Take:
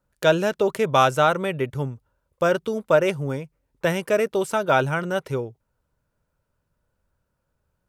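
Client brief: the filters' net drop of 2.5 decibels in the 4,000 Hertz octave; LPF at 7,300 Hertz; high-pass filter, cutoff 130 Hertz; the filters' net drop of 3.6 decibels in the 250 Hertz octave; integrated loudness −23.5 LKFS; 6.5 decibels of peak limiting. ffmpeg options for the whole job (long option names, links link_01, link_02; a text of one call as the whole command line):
ffmpeg -i in.wav -af "highpass=130,lowpass=7300,equalizer=frequency=250:width_type=o:gain=-5,equalizer=frequency=4000:width_type=o:gain=-3,volume=2dB,alimiter=limit=-10dB:level=0:latency=1" out.wav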